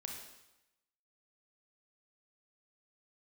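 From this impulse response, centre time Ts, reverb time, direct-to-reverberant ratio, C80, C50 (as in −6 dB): 45 ms, 0.95 s, 0.5 dB, 5.5 dB, 3.0 dB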